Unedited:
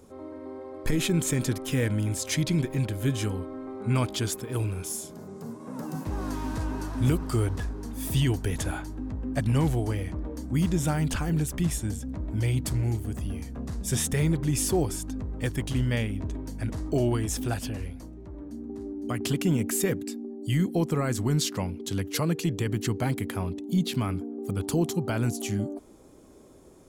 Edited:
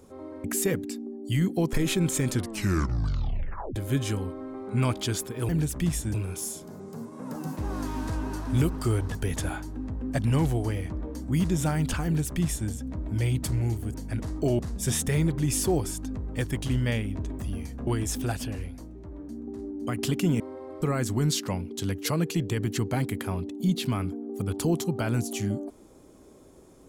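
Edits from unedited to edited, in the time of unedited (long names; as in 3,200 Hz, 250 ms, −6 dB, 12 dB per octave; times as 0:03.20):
0:00.44–0:00.86: swap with 0:19.62–0:20.91
0:01.43: tape stop 1.46 s
0:07.63–0:08.37: remove
0:11.27–0:11.92: duplicate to 0:04.62
0:13.16–0:13.64: swap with 0:16.44–0:17.09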